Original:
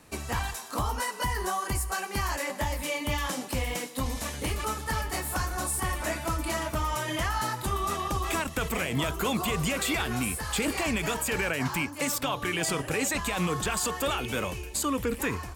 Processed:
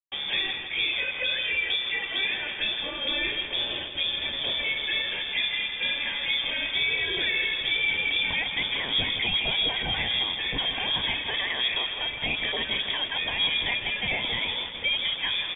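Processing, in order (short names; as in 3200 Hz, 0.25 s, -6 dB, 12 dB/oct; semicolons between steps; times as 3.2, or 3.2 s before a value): HPF 76 Hz 24 dB/oct; in parallel at +3 dB: limiter -27 dBFS, peak gain reduction 10.5 dB; on the sum: fixed phaser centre 2200 Hz, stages 6; bit-crush 6-bit; on a send: feedback echo 0.163 s, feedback 56%, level -9.5 dB; on the sum: inverted band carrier 3500 Hz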